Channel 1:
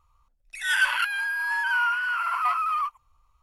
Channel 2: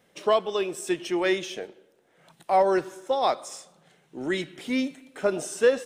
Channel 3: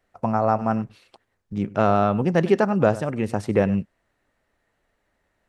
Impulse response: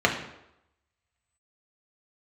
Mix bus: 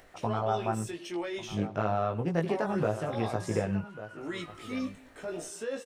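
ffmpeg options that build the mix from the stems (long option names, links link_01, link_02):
-filter_complex "[0:a]acompressor=threshold=-29dB:ratio=6,adelay=2000,volume=-17dB[link_01];[1:a]alimiter=limit=-21.5dB:level=0:latency=1:release=34,volume=-4dB[link_02];[2:a]acompressor=mode=upward:threshold=-37dB:ratio=2.5,equalizer=frequency=220:width=4.7:gain=-5.5,volume=-1.5dB,asplit=2[link_03][link_04];[link_04]volume=-20.5dB[link_05];[link_01][link_03]amix=inputs=2:normalize=0,acompressor=threshold=-26dB:ratio=2,volume=0dB[link_06];[link_05]aecho=0:1:1143:1[link_07];[link_02][link_06][link_07]amix=inputs=3:normalize=0,flanger=delay=17.5:depth=2.1:speed=0.91"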